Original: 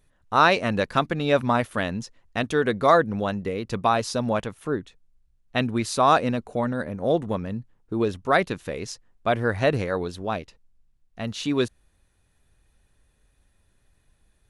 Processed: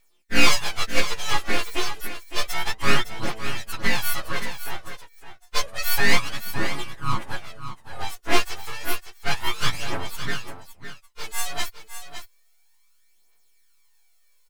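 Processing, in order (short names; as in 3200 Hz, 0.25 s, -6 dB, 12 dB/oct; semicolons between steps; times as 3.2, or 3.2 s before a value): frequency quantiser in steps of 4 st; HPF 450 Hz 12 dB/oct; full-wave rectifier; phaser 0.3 Hz, delay 3 ms, feedback 54%; on a send: echo 0.561 s -10.5 dB; on the sum: gain -2 dB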